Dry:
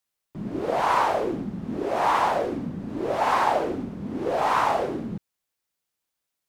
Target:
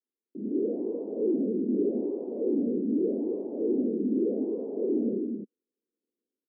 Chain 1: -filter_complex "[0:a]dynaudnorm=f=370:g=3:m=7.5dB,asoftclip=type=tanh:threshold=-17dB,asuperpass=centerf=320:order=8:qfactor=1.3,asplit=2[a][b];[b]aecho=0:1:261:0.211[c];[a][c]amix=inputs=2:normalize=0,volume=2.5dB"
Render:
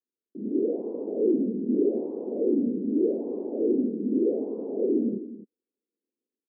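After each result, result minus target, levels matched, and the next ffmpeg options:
echo-to-direct -9 dB; soft clip: distortion -4 dB
-filter_complex "[0:a]dynaudnorm=f=370:g=3:m=7.5dB,asoftclip=type=tanh:threshold=-17dB,asuperpass=centerf=320:order=8:qfactor=1.3,asplit=2[a][b];[b]aecho=0:1:261:0.596[c];[a][c]amix=inputs=2:normalize=0,volume=2.5dB"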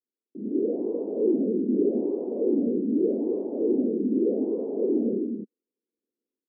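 soft clip: distortion -4 dB
-filter_complex "[0:a]dynaudnorm=f=370:g=3:m=7.5dB,asoftclip=type=tanh:threshold=-23.5dB,asuperpass=centerf=320:order=8:qfactor=1.3,asplit=2[a][b];[b]aecho=0:1:261:0.596[c];[a][c]amix=inputs=2:normalize=0,volume=2.5dB"

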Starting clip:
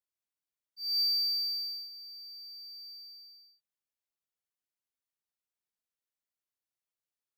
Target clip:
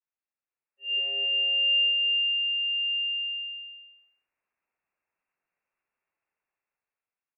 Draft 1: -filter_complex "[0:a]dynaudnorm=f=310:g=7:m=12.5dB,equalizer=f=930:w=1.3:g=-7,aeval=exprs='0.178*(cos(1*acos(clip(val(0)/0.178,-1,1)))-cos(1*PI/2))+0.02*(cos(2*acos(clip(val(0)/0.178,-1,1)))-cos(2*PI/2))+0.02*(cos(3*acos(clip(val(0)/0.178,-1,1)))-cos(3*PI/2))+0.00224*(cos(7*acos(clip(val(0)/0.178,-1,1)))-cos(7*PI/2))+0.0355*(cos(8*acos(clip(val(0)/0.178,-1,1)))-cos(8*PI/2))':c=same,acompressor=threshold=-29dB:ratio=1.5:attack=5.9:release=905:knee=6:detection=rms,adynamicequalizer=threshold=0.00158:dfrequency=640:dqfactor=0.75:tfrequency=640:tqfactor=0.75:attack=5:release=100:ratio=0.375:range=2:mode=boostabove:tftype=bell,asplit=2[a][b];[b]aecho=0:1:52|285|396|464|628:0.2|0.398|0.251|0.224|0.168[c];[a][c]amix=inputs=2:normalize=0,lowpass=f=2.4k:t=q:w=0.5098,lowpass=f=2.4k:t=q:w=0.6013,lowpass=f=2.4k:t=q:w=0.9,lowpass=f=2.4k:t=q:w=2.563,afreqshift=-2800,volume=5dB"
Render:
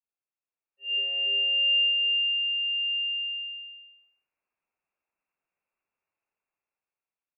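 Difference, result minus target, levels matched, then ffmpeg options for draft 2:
1000 Hz band -3.5 dB
-filter_complex "[0:a]dynaudnorm=f=310:g=7:m=12.5dB,aeval=exprs='0.178*(cos(1*acos(clip(val(0)/0.178,-1,1)))-cos(1*PI/2))+0.02*(cos(2*acos(clip(val(0)/0.178,-1,1)))-cos(2*PI/2))+0.02*(cos(3*acos(clip(val(0)/0.178,-1,1)))-cos(3*PI/2))+0.00224*(cos(7*acos(clip(val(0)/0.178,-1,1)))-cos(7*PI/2))+0.0355*(cos(8*acos(clip(val(0)/0.178,-1,1)))-cos(8*PI/2))':c=same,acompressor=threshold=-29dB:ratio=1.5:attack=5.9:release=905:knee=6:detection=rms,adynamicequalizer=threshold=0.00158:dfrequency=640:dqfactor=0.75:tfrequency=640:tqfactor=0.75:attack=5:release=100:ratio=0.375:range=2:mode=boostabove:tftype=bell,asplit=2[a][b];[b]aecho=0:1:52|285|396|464|628:0.2|0.398|0.251|0.224|0.168[c];[a][c]amix=inputs=2:normalize=0,lowpass=f=2.4k:t=q:w=0.5098,lowpass=f=2.4k:t=q:w=0.6013,lowpass=f=2.4k:t=q:w=0.9,lowpass=f=2.4k:t=q:w=2.563,afreqshift=-2800,volume=5dB"

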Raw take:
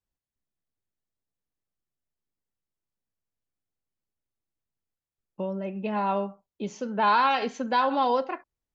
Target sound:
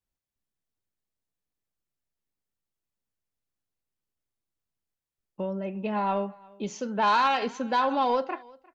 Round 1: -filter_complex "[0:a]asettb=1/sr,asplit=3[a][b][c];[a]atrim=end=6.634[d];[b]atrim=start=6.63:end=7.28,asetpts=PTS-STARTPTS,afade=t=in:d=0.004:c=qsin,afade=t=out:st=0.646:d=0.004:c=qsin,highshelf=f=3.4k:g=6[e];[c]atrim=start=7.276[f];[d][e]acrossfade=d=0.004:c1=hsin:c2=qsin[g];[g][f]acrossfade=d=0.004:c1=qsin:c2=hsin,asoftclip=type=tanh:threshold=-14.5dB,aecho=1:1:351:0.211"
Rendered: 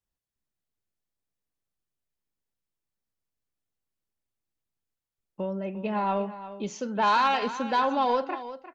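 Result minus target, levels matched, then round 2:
echo-to-direct +11.5 dB
-filter_complex "[0:a]asettb=1/sr,asplit=3[a][b][c];[a]atrim=end=6.634[d];[b]atrim=start=6.63:end=7.28,asetpts=PTS-STARTPTS,afade=t=in:d=0.004:c=qsin,afade=t=out:st=0.646:d=0.004:c=qsin,highshelf=f=3.4k:g=6[e];[c]atrim=start=7.276[f];[d][e]acrossfade=d=0.004:c1=hsin:c2=qsin[g];[g][f]acrossfade=d=0.004:c1=qsin:c2=hsin,asoftclip=type=tanh:threshold=-14.5dB,aecho=1:1:351:0.0562"

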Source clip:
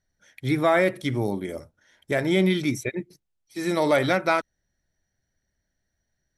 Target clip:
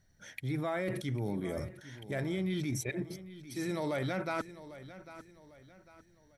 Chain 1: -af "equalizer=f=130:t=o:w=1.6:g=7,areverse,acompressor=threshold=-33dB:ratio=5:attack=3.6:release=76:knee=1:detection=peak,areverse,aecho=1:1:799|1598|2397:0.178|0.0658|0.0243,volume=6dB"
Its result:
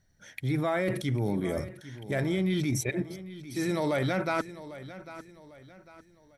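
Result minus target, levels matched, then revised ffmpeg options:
compressor: peak gain reduction -6 dB
-af "equalizer=f=130:t=o:w=1.6:g=7,areverse,acompressor=threshold=-40.5dB:ratio=5:attack=3.6:release=76:knee=1:detection=peak,areverse,aecho=1:1:799|1598|2397:0.178|0.0658|0.0243,volume=6dB"

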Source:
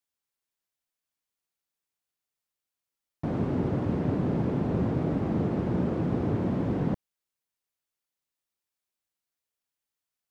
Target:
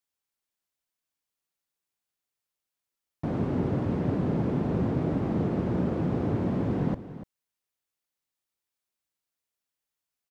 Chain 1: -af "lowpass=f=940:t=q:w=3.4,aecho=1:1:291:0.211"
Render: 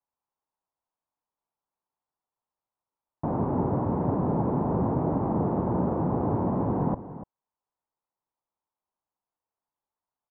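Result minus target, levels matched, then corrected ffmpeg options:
1000 Hz band +7.0 dB
-af "aecho=1:1:291:0.211"

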